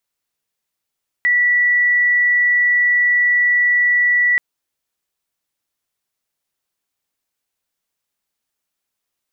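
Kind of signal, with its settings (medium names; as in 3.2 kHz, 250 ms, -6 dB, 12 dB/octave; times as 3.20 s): tone sine 1.95 kHz -11.5 dBFS 3.13 s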